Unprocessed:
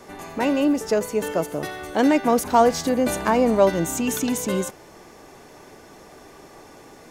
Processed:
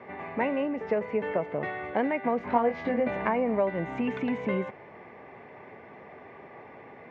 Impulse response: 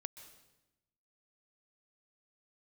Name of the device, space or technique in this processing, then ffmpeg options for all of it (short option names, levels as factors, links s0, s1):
bass amplifier: -filter_complex "[0:a]acompressor=threshold=0.0708:ratio=4,highpass=f=82:w=0.5412,highpass=f=82:w=1.3066,equalizer=f=88:t=q:w=4:g=-4,equalizer=f=160:t=q:w=4:g=-3,equalizer=f=310:t=q:w=4:g=-8,equalizer=f=1400:t=q:w=4:g=-6,equalizer=f=2100:t=q:w=4:g=7,lowpass=f=2300:w=0.5412,lowpass=f=2300:w=1.3066,asettb=1/sr,asplit=3[s0][s1][s2];[s0]atrim=end=2.384[s3];[s1]atrim=start=2.38:end=3.08,asetpts=PTS-STARTPTS,afade=t=in:d=0.004:c=qsin,afade=t=out:st=0.696:d=0.004:c=qsin,asplit=2[s4][s5];[s5]adelay=21,volume=0.631[s6];[s4][s6]amix=inputs=2:normalize=0,atrim=end_sample=30870[s7];[s2]atrim=start=3.076[s8];[s3][s7]acrossfade=d=0.004:c1=hsin:c2=qsin[s9];[s9][s8]acrossfade=d=0.004:c1=qsin:c2=hsin"